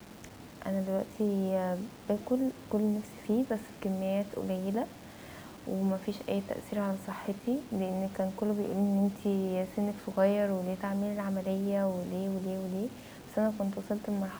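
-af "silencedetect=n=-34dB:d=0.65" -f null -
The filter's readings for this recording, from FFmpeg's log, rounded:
silence_start: 4.85
silence_end: 5.67 | silence_duration: 0.82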